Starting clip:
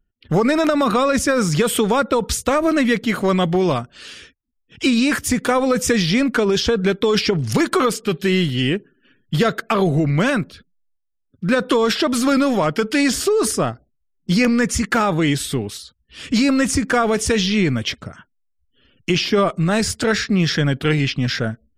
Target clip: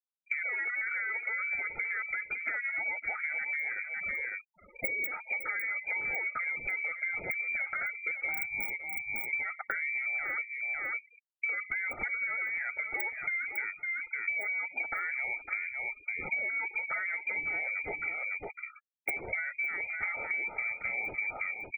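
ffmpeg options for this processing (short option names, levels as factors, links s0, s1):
-filter_complex "[0:a]lowpass=f=2600:t=q:w=0.5098,lowpass=f=2600:t=q:w=0.6013,lowpass=f=2600:t=q:w=0.9,lowpass=f=2600:t=q:w=2.563,afreqshift=-3000,aphaser=in_gain=1:out_gain=1:delay=2.1:decay=0.29:speed=0.81:type=triangular,asuperstop=centerf=1300:order=20:qfactor=3.7,asetrate=36028,aresample=44100,atempo=1.22405,agate=range=0.398:threshold=0.00447:ratio=16:detection=peak,acrossover=split=400[s0][s1];[s0]aeval=exprs='(mod(23.7*val(0)+1,2)-1)/23.7':c=same[s2];[s2][s1]amix=inputs=2:normalize=0,deesser=0.55,alimiter=limit=0.224:level=0:latency=1:release=204,afftfilt=real='re*gte(hypot(re,im),0.02)':imag='im*gte(hypot(re,im),0.02)':win_size=1024:overlap=0.75,aemphasis=mode=production:type=50fm,aecho=1:1:555:0.251,acompressor=threshold=0.0224:ratio=12,volume=1.19"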